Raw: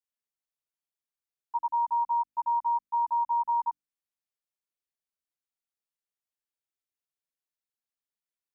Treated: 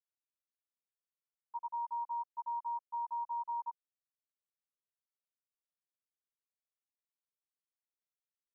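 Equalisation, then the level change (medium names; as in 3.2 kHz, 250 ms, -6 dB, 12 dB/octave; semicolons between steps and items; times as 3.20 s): band-pass filter 720 Hz, Q 1.6; static phaser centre 770 Hz, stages 6; -3.5 dB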